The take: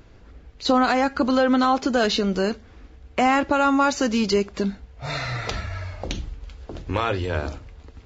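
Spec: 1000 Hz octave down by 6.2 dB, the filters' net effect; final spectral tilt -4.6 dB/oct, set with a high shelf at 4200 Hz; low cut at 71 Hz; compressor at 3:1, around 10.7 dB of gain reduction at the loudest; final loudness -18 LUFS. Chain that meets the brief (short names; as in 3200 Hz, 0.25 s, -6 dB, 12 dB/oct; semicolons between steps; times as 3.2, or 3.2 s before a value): HPF 71 Hz; bell 1000 Hz -8.5 dB; high shelf 4200 Hz -5.5 dB; compressor 3:1, threshold -32 dBFS; gain +16 dB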